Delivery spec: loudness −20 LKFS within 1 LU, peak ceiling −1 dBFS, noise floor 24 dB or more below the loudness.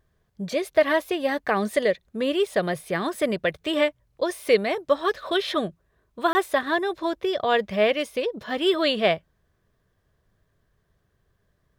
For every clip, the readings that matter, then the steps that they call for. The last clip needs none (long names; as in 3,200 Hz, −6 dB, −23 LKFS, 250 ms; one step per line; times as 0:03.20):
number of dropouts 1; longest dropout 20 ms; integrated loudness −24.5 LKFS; sample peak −7.0 dBFS; target loudness −20.0 LKFS
→ repair the gap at 0:06.33, 20 ms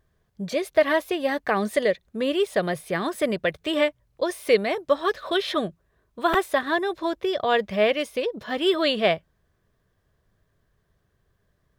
number of dropouts 0; integrated loudness −24.5 LKFS; sample peak −7.0 dBFS; target loudness −20.0 LKFS
→ level +4.5 dB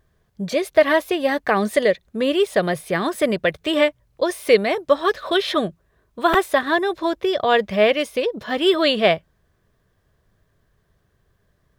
integrated loudness −20.0 LKFS; sample peak −2.5 dBFS; background noise floor −66 dBFS